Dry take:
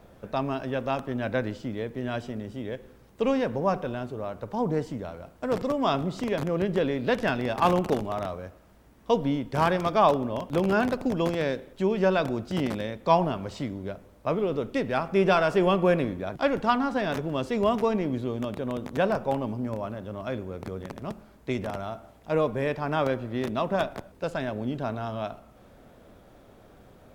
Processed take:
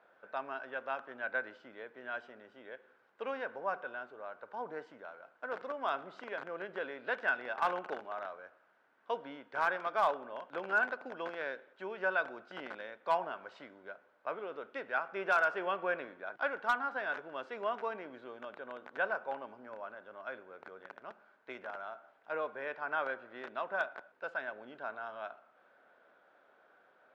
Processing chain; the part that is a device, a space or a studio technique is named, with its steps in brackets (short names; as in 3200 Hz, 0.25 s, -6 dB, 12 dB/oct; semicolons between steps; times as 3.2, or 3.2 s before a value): megaphone (BPF 640–2600 Hz; bell 1500 Hz +12 dB 0.25 oct; hard clip -12.5 dBFS, distortion -26 dB); gain -8 dB